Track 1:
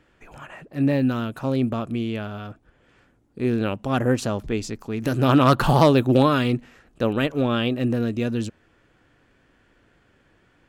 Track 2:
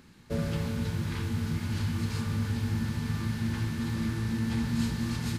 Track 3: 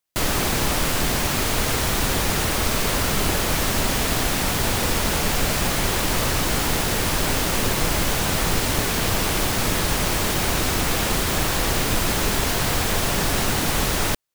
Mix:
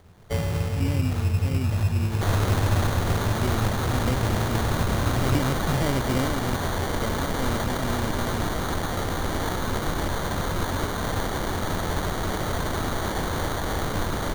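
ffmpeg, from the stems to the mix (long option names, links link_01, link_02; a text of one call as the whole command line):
ffmpeg -i stem1.wav -i stem2.wav -i stem3.wav -filter_complex "[0:a]lowshelf=frequency=350:gain=10,volume=-16dB[link_01];[1:a]aecho=1:1:1.9:0.84,acrusher=samples=19:mix=1:aa=0.000001,volume=1dB[link_02];[2:a]adelay=2050,volume=-5.5dB[link_03];[link_01][link_02][link_03]amix=inputs=3:normalize=0,equalizer=frequency=88:width=5.8:gain=8,acrusher=samples=17:mix=1:aa=0.000001" out.wav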